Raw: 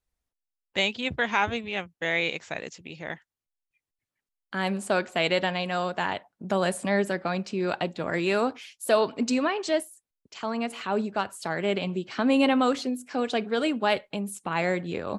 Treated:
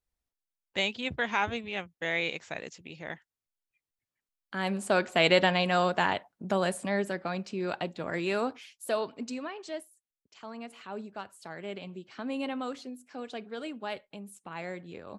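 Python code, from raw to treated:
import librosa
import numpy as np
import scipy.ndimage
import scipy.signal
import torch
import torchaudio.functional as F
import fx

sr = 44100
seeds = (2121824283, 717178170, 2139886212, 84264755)

y = fx.gain(x, sr, db=fx.line((4.57, -4.0), (5.31, 2.5), (5.91, 2.5), (6.91, -5.0), (8.63, -5.0), (9.4, -12.5)))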